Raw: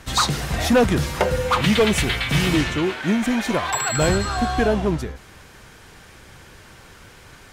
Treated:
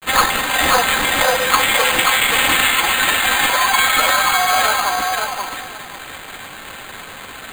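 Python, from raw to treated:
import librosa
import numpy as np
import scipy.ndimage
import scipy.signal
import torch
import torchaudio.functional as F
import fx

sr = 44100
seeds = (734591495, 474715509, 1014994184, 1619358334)

p1 = scipy.signal.sosfilt(scipy.signal.butter(4, 760.0, 'highpass', fs=sr, output='sos'), x)
p2 = p1 + 0.91 * np.pad(p1, (int(3.8 * sr / 1000.0), 0))[:len(p1)]
p3 = fx.over_compress(p2, sr, threshold_db=-26.0, ratio=-0.5)
p4 = p2 + (p3 * 10.0 ** (-1.5 / 20.0))
p5 = fx.quant_dither(p4, sr, seeds[0], bits=6, dither='none')
p6 = fx.granulator(p5, sr, seeds[1], grain_ms=100.0, per_s=20.0, spray_ms=18.0, spread_st=0)
p7 = p6 + fx.echo_feedback(p6, sr, ms=533, feedback_pct=18, wet_db=-3.5, dry=0)
p8 = np.repeat(p7[::8], 8)[:len(p7)]
y = p8 * 10.0 ** (4.5 / 20.0)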